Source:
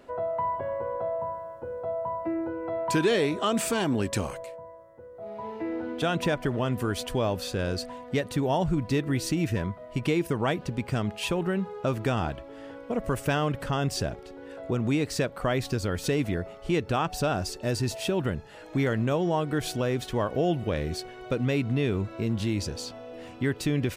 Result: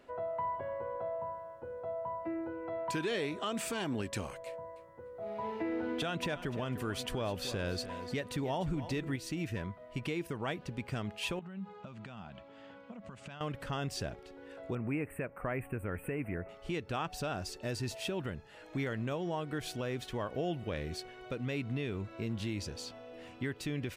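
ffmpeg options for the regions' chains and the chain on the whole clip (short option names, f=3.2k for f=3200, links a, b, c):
-filter_complex "[0:a]asettb=1/sr,asplit=3[a][b][c];[a]atrim=end=4.464[d];[b]atrim=start=4.46:end=9.16,asetpts=PTS-STARTPTS,afade=t=in:d=0.004:c=qsin,afade=t=out:st=4.696:d=0.004:c=qsin,acontrast=50,aecho=1:1:299|598:0.178|0.032,atrim=end_sample=207270[e];[c]atrim=start=9.156[f];[d][e]acrossfade=d=0.004:c1=hsin:c2=qsin[g];[g][f]acrossfade=d=0.004:c1=qsin:c2=hsin,asettb=1/sr,asplit=3[h][i][j];[h]atrim=end=11.394[k];[i]atrim=start=11.39:end=13.41,asetpts=PTS-STARTPTS,afade=t=in:d=0.004:c=qsin,afade=t=out:st=2.016:d=0.004:c=qsin,acompressor=threshold=-34dB:ratio=12:attack=3.2:release=140:knee=1:detection=peak,highpass=100,equalizer=f=200:t=q:w=4:g=9,equalizer=f=320:t=q:w=4:g=-10,equalizer=f=460:t=q:w=4:g=-8,equalizer=f=1.8k:t=q:w=4:g=-4,equalizer=f=5.6k:t=q:w=4:g=-6,lowpass=f=7k:w=0.5412,lowpass=f=7k:w=1.3066[l];[j]atrim=start=13.406[m];[k][l]acrossfade=d=0.004:c1=hsin:c2=qsin[n];[n][m]acrossfade=d=0.004:c1=qsin:c2=hsin,asettb=1/sr,asplit=3[o][p][q];[o]atrim=end=14.754[r];[p]atrim=start=14.75:end=16.49,asetpts=PTS-STARTPTS,afade=t=in:d=0.004:c=qsin,afade=t=out:st=1.736:d=0.004:c=qsin,asuperstop=centerf=4900:order=12:qfactor=0.81,equalizer=f=10k:w=5.7:g=-6.5[s];[q]atrim=start=16.486[t];[r][s]acrossfade=d=0.004:c1=hsin:c2=qsin[u];[u][t]acrossfade=d=0.004:c1=qsin:c2=hsin,alimiter=limit=-18.5dB:level=0:latency=1:release=378,equalizer=f=2.4k:t=o:w=1.7:g=4,volume=-8dB"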